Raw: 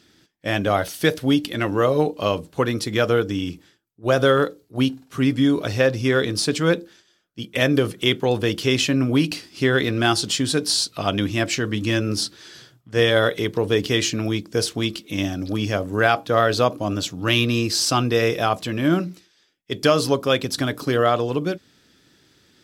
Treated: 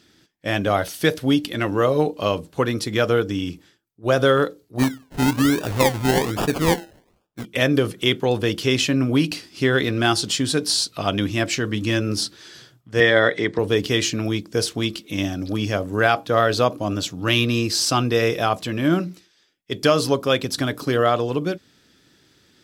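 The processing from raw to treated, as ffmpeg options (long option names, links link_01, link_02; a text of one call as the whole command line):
ffmpeg -i in.wav -filter_complex "[0:a]asplit=3[link_01][link_02][link_03];[link_01]afade=type=out:start_time=4.78:duration=0.02[link_04];[link_02]acrusher=samples=30:mix=1:aa=0.000001:lfo=1:lforange=18:lforate=1.2,afade=type=in:start_time=4.78:duration=0.02,afade=type=out:start_time=7.44:duration=0.02[link_05];[link_03]afade=type=in:start_time=7.44:duration=0.02[link_06];[link_04][link_05][link_06]amix=inputs=3:normalize=0,asettb=1/sr,asplit=3[link_07][link_08][link_09];[link_07]atrim=end=13.004[link_10];[link_08]atrim=start=13:end=13.59,asetpts=PTS-STARTPTS,afade=type=in:duration=0.004:curve=qsin,afade=type=out:start_time=0.586:duration=0.004:curve=qsin,highpass=120,equalizer=frequency=300:width_type=q:width=4:gain=3,equalizer=frequency=690:width_type=q:width=4:gain=3,equalizer=frequency=1900:width_type=q:width=4:gain=10,equalizer=frequency=2800:width_type=q:width=4:gain=-6,equalizer=frequency=6200:width_type=q:width=4:gain=-6,lowpass=frequency=7500:width=0.5412,lowpass=frequency=7500:width=1.3066[link_11];[link_09]atrim=start=13.586[link_12];[link_10][link_11]acrossfade=duration=0.004:curve1=hsin:curve2=qsin[link_13];[link_13][link_12]acrossfade=duration=0.004:curve1=qsin:curve2=hsin" out.wav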